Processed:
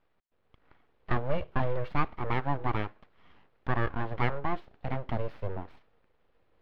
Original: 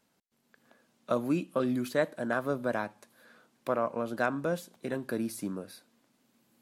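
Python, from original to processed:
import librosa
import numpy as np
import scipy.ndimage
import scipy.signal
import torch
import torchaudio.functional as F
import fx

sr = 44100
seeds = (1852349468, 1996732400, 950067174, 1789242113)

y = scipy.ndimage.median_filter(x, 5, mode='constant')
y = np.abs(y)
y = fx.air_absorb(y, sr, metres=360.0)
y = y * 10.0 ** (4.0 / 20.0)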